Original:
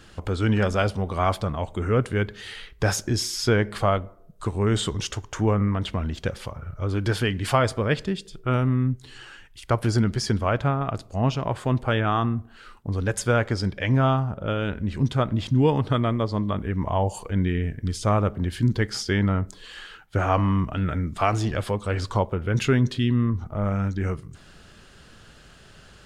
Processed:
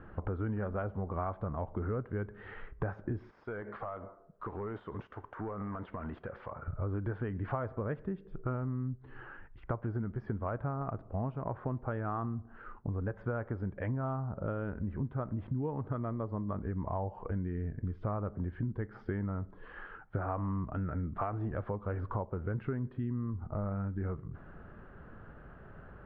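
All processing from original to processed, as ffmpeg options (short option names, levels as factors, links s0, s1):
-filter_complex "[0:a]asettb=1/sr,asplit=3[s0][s1][s2];[s0]atrim=end=3.304[s3];[s1]atrim=start=3.3:end=6.68,asetpts=PTS-STARTPTS,afade=t=in:d=0.004:c=qsin,afade=t=out:st=3.376:d=0.004:c=qsin,aemphasis=mode=production:type=riaa,acompressor=threshold=0.0282:ratio=16:attack=3.2:release=140:knee=1:detection=peak,volume=42.2,asoftclip=hard,volume=0.0237[s4];[s2]atrim=start=6.676[s5];[s3][s4]acrossfade=d=0.004:c1=hsin:c2=qsin[s6];[s6][s5]acrossfade=d=0.004:c1=qsin:c2=hsin,lowpass=f=1500:w=0.5412,lowpass=f=1500:w=1.3066,acompressor=threshold=0.0224:ratio=6"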